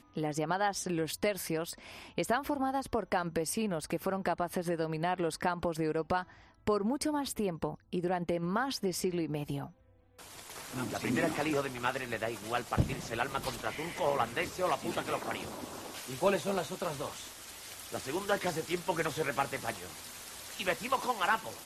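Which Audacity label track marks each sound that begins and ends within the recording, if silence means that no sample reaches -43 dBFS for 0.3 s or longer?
6.670000	9.670000	sound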